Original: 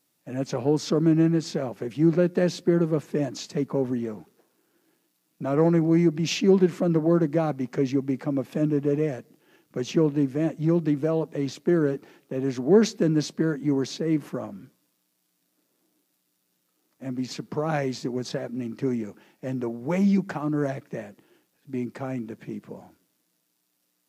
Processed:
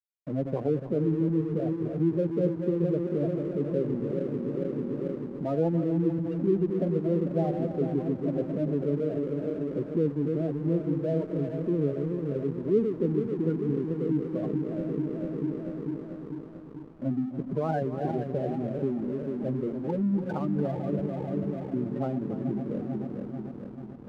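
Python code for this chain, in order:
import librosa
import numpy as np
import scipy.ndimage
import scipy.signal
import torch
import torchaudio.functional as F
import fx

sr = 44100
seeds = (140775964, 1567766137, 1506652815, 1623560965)

p1 = fx.reverse_delay_fb(x, sr, ms=221, feedback_pct=79, wet_db=-6.5)
p2 = scipy.signal.sosfilt(scipy.signal.butter(2, 1900.0, 'lowpass', fs=sr, output='sos'), p1)
p3 = fx.spec_gate(p2, sr, threshold_db=-15, keep='strong')
p4 = fx.dynamic_eq(p3, sr, hz=260.0, q=0.72, threshold_db=-31.0, ratio=4.0, max_db=-6)
p5 = fx.rider(p4, sr, range_db=10, speed_s=0.5)
p6 = p4 + (p5 * librosa.db_to_amplitude(0.5))
p7 = fx.backlash(p6, sr, play_db=-34.0)
p8 = p7 + 10.0 ** (-12.0 / 20.0) * np.pad(p7, (int(290 * sr / 1000.0), 0))[:len(p7)]
y = p8 * librosa.db_to_amplitude(-6.5)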